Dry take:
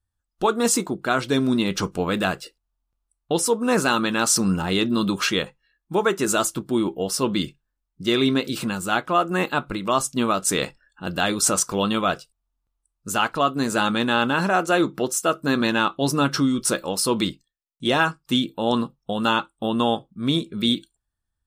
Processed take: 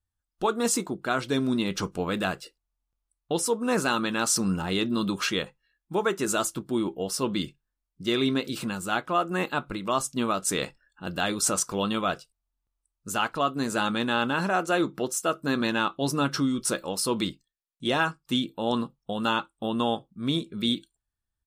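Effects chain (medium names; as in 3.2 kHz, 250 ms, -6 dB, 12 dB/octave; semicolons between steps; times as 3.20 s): resampled via 32 kHz; trim -5 dB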